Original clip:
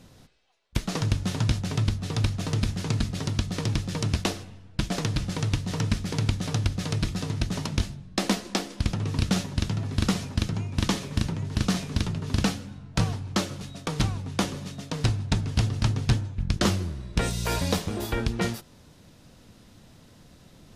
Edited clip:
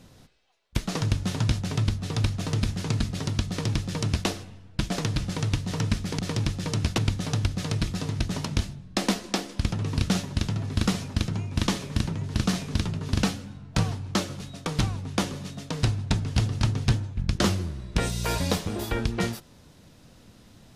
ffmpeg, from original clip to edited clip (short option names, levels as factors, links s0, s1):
-filter_complex "[0:a]asplit=3[s0][s1][s2];[s0]atrim=end=6.192[s3];[s1]atrim=start=3.478:end=4.272[s4];[s2]atrim=start=6.188[s5];[s3][s4]acrossfade=d=0.004:c1=hsin:c2=hsin[s6];[s6][s5]acrossfade=d=0.004:c1=hsin:c2=hsin"